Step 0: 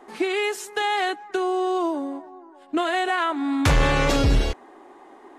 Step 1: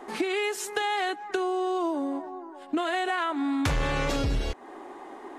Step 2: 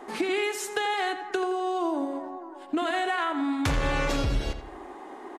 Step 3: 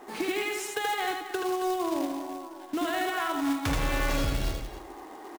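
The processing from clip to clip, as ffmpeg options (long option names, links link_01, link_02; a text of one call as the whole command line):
ffmpeg -i in.wav -af "acompressor=threshold=-31dB:ratio=4,volume=4.5dB" out.wav
ffmpeg -i in.wav -filter_complex "[0:a]asplit=2[link_01][link_02];[link_02]adelay=85,lowpass=frequency=3500:poles=1,volume=-9dB,asplit=2[link_03][link_04];[link_04]adelay=85,lowpass=frequency=3500:poles=1,volume=0.46,asplit=2[link_05][link_06];[link_06]adelay=85,lowpass=frequency=3500:poles=1,volume=0.46,asplit=2[link_07][link_08];[link_08]adelay=85,lowpass=frequency=3500:poles=1,volume=0.46,asplit=2[link_09][link_10];[link_10]adelay=85,lowpass=frequency=3500:poles=1,volume=0.46[link_11];[link_01][link_03][link_05][link_07][link_09][link_11]amix=inputs=6:normalize=0" out.wav
ffmpeg -i in.wav -af "aecho=1:1:78.72|271.1:0.708|0.282,acrusher=bits=3:mode=log:mix=0:aa=0.000001,volume=-4dB" out.wav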